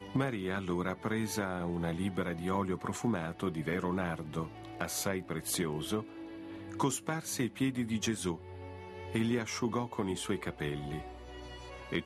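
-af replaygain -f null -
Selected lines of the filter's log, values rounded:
track_gain = +16.0 dB
track_peak = 0.091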